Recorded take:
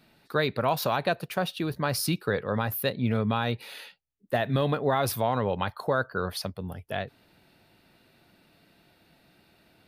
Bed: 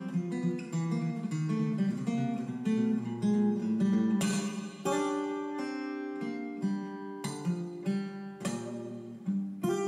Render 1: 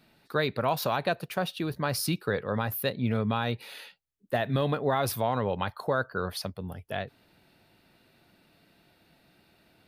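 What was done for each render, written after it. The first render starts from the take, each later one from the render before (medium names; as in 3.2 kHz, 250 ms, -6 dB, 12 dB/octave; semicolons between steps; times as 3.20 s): trim -1.5 dB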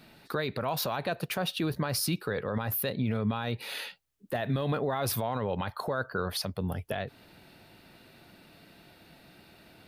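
in parallel at +2.5 dB: compression, threshold -36 dBFS, peak gain reduction 13.5 dB; on the sum: peak limiter -20.5 dBFS, peak gain reduction 8.5 dB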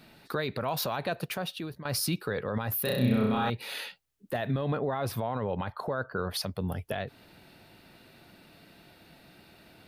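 1.18–1.85 s: fade out, to -15 dB; 2.82–3.50 s: flutter echo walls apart 5.5 m, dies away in 1 s; 4.51–6.34 s: treble shelf 3.4 kHz -11 dB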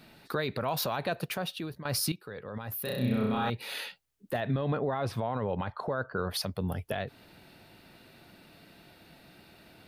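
2.12–3.78 s: fade in, from -13.5 dB; 4.40–6.18 s: distance through air 58 m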